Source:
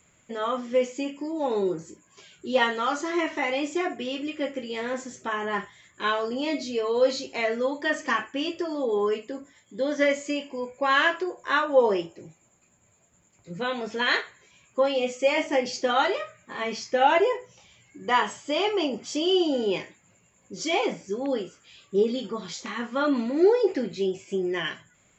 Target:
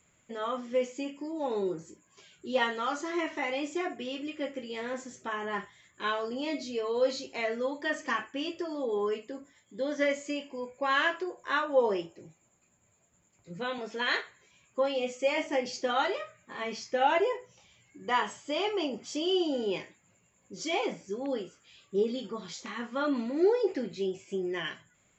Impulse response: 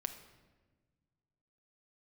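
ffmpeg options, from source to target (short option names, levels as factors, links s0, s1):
-filter_complex "[0:a]asettb=1/sr,asplit=3[s0][s1][s2];[s0]atrim=end=13.784[s3];[s1]atrim=start=13.78:end=14.2,asetpts=PTS-STARTPTS,afade=t=in:d=0.004:c=qsin,afade=t=out:st=0.416:d=0.004:c=qsin,highpass=200[s4];[s2]atrim=start=14.196[s5];[s3][s4]acrossfade=d=0.004:c1=hsin:c2=qsin[s6];[s6][s5]acrossfade=d=0.004:c1=qsin:c2=hsin,volume=0.531"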